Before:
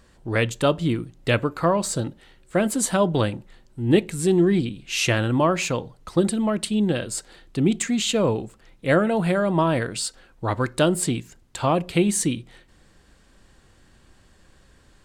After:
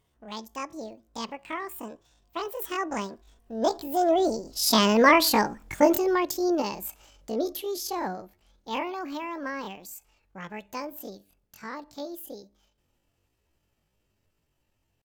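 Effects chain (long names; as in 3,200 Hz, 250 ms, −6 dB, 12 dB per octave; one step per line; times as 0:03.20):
source passing by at 0:05.30, 23 m/s, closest 13 metres
pitch shifter +10 semitones
level +3.5 dB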